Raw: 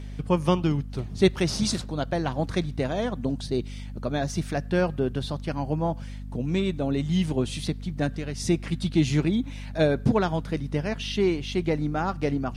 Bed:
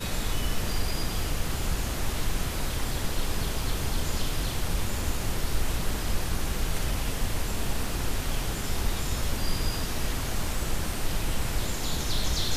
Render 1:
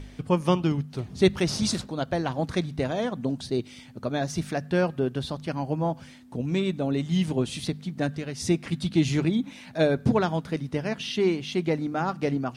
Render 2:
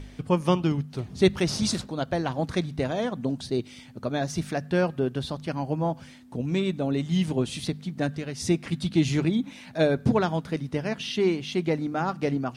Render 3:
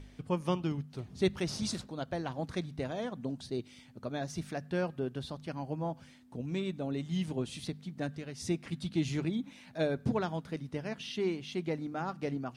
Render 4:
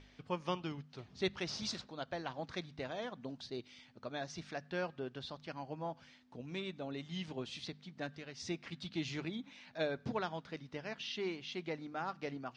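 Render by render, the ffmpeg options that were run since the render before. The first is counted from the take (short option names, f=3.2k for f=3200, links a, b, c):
-af "bandreject=f=50:t=h:w=4,bandreject=f=100:t=h:w=4,bandreject=f=150:t=h:w=4,bandreject=f=200:t=h:w=4"
-af anull
-af "volume=-9dB"
-af "lowpass=f=5.7k:w=0.5412,lowpass=f=5.7k:w=1.3066,lowshelf=f=470:g=-11.5"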